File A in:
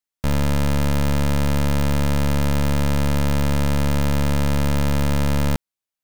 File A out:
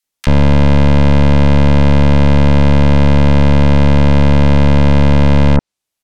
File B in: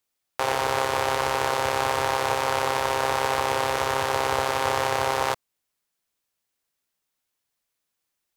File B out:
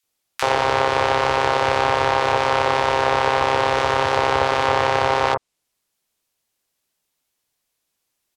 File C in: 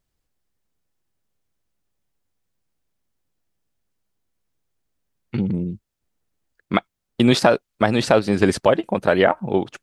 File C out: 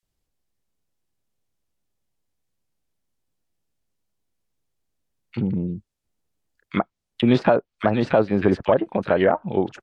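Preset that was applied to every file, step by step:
treble cut that deepens with the level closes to 2,200 Hz, closed at −16 dBFS
multiband delay without the direct sound highs, lows 30 ms, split 1,500 Hz
normalise the peak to −3 dBFS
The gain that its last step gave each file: +11.0, +6.0, −1.5 decibels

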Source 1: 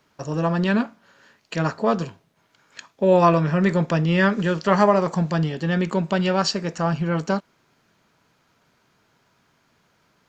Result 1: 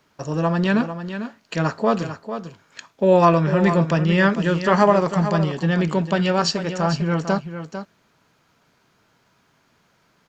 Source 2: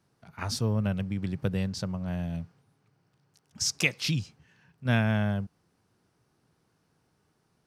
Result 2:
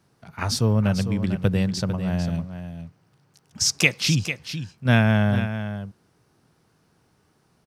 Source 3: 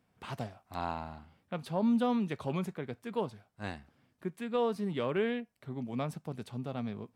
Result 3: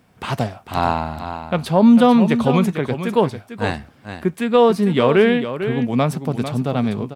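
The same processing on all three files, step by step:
single-tap delay 448 ms −10 dB
normalise the peak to −2 dBFS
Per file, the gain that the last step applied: +1.5, +7.0, +17.0 decibels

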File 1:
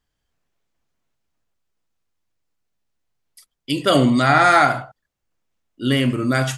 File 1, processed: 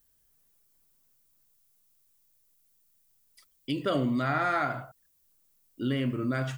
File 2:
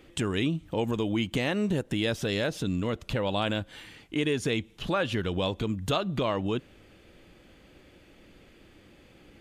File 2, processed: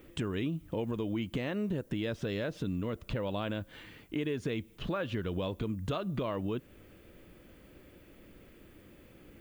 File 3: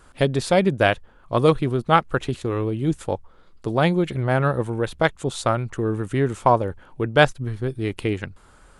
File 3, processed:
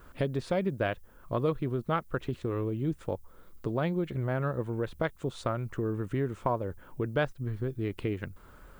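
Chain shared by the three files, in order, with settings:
low-pass filter 1,800 Hz 6 dB per octave
parametric band 800 Hz −6 dB 0.27 octaves
downward compressor 2 to 1, threshold −34 dBFS
background noise violet −69 dBFS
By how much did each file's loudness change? −12.5, −6.0, −10.5 LU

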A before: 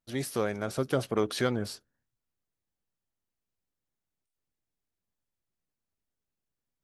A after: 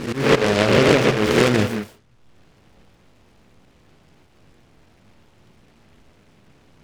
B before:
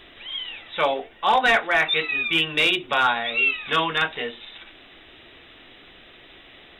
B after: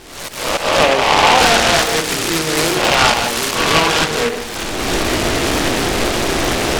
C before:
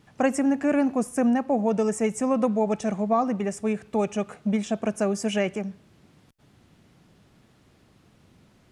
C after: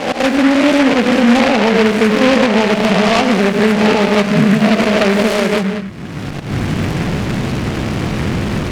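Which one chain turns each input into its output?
peak hold with a rise ahead of every peak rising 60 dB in 1.05 s
camcorder AGC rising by 30 dB per second
low-pass filter 1,600 Hz 12 dB per octave
volume swells 137 ms
reverb whose tail is shaped and stops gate 210 ms rising, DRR 7 dB
boost into a limiter +8 dB
short delay modulated by noise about 1,600 Hz, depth 0.15 ms
normalise the peak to −2 dBFS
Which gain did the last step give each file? −1.0, −1.0, −1.0 decibels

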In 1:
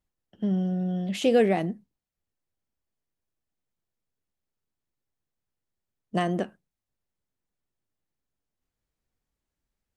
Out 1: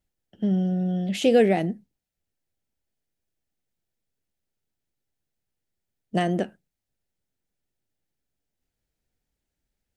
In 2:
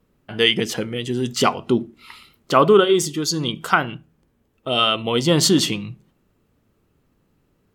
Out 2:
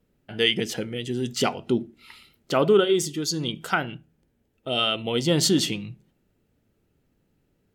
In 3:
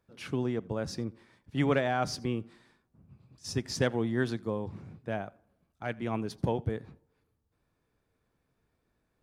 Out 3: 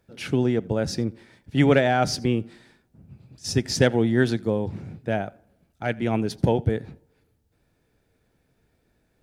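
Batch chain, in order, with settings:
parametric band 1,100 Hz −10.5 dB 0.35 octaves
loudness normalisation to −24 LKFS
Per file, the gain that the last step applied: +3.0, −4.5, +9.5 decibels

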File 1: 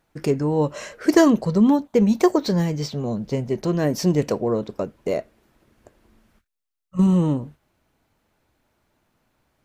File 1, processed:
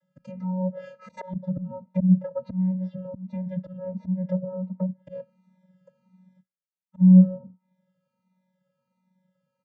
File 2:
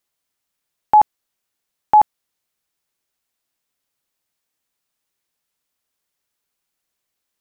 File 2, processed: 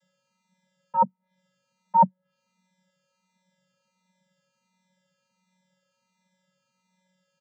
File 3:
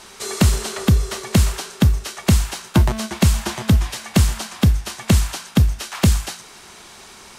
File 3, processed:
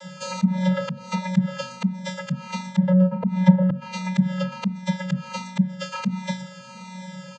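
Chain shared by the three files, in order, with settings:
channel vocoder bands 16, square 185 Hz
volume swells 251 ms
treble cut that deepens with the level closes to 830 Hz, closed at −28.5 dBFS
barber-pole flanger 3.1 ms −1.4 Hz
loudness normalisation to −24 LKFS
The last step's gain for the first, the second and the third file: +5.5, +12.0, +17.5 decibels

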